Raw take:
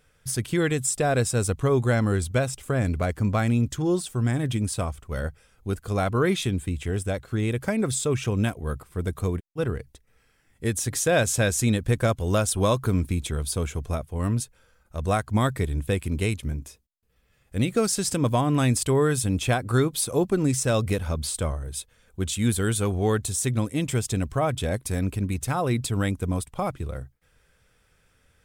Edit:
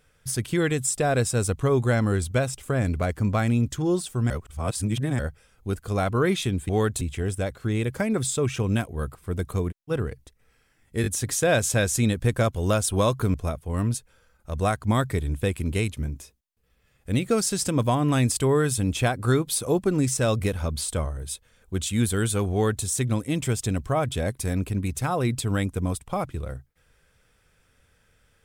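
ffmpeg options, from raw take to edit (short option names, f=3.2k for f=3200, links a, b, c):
-filter_complex "[0:a]asplit=8[a][b][c][d][e][f][g][h];[a]atrim=end=4.302[i];[b]atrim=start=4.298:end=5.192,asetpts=PTS-STARTPTS,areverse[j];[c]atrim=start=5.188:end=6.692[k];[d]atrim=start=22.978:end=23.302[l];[e]atrim=start=6.688:end=10.722[m];[f]atrim=start=10.698:end=10.722[n];[g]atrim=start=10.698:end=12.982[o];[h]atrim=start=13.798[p];[i][j]acrossfade=d=0.004:c1=hsin:c2=hsin[q];[q][k]acrossfade=d=0.004:c1=hsin:c2=hsin[r];[r][l]acrossfade=d=0.004:c1=hsin:c2=hsin[s];[s][m]acrossfade=d=0.004:c1=hsin:c2=hsin[t];[t][n]acrossfade=d=0.004:c1=hsin:c2=hsin[u];[u][o]acrossfade=d=0.004:c1=hsin:c2=hsin[v];[v][p]acrossfade=d=0.004:c1=hsin:c2=hsin"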